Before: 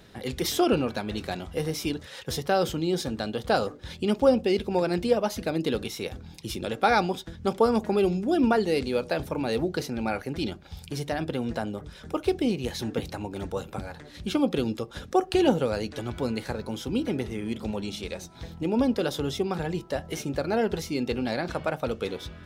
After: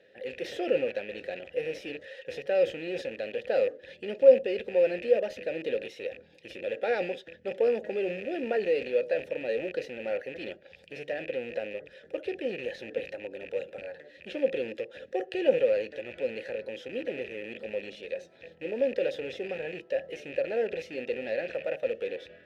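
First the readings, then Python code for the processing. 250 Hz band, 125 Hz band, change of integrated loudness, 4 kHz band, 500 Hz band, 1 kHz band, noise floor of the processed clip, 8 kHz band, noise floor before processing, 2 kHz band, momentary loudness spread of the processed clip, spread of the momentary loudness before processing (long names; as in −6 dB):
−13.0 dB, −18.5 dB, −3.0 dB, −10.0 dB, 0.0 dB, −13.5 dB, −56 dBFS, below −15 dB, −47 dBFS, −3.0 dB, 13 LU, 12 LU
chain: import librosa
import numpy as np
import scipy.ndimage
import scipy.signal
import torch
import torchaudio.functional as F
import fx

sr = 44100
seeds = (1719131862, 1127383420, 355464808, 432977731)

p1 = fx.rattle_buzz(x, sr, strikes_db=-36.0, level_db=-27.0)
p2 = fx.schmitt(p1, sr, flips_db=-26.0)
p3 = p1 + (p2 * 10.0 ** (-9.0 / 20.0))
p4 = fx.transient(p3, sr, attack_db=-2, sustain_db=5)
p5 = fx.vowel_filter(p4, sr, vowel='e')
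y = p5 * 10.0 ** (5.0 / 20.0)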